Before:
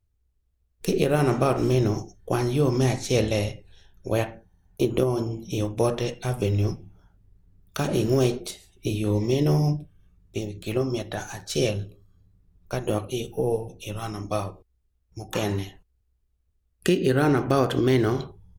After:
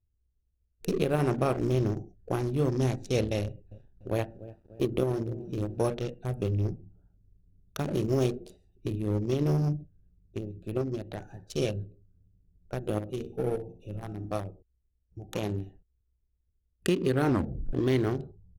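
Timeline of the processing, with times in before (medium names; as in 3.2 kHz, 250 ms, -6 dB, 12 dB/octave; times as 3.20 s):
3.42–5.78 s: bit-crushed delay 293 ms, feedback 55%, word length 7-bit, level -13 dB
12.91–14.37 s: flutter echo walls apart 9.8 m, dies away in 0.39 s
17.28 s: tape stop 0.45 s
whole clip: local Wiener filter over 41 samples; trim -4.5 dB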